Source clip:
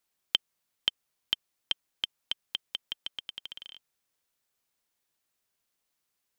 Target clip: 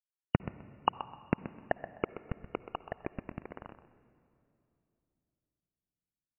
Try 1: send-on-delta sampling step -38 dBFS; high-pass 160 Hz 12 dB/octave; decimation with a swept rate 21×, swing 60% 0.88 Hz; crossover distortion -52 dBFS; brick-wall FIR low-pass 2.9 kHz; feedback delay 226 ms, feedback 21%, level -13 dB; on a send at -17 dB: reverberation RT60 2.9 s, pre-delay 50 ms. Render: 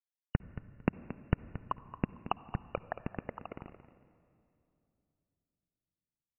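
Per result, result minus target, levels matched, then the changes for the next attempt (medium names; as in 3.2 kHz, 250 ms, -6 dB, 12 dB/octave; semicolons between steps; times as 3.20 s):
decimation with a swept rate: distortion +24 dB; echo 98 ms late; send-on-delta sampling: distortion -11 dB
change: decimation with a swept rate 21×, swing 60% 0.54 Hz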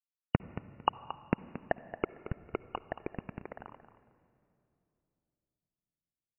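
echo 98 ms late; send-on-delta sampling: distortion -11 dB
change: feedback delay 128 ms, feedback 21%, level -13 dB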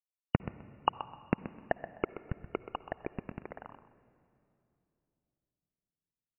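send-on-delta sampling: distortion -11 dB
change: send-on-delta sampling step -29 dBFS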